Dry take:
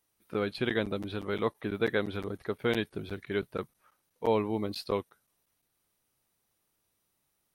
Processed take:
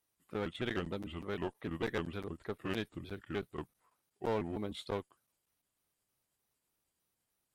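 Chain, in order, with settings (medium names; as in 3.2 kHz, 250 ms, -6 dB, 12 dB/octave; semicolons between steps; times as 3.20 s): pitch shift switched off and on -3.5 st, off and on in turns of 152 ms; one-sided clip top -32 dBFS; trim -5.5 dB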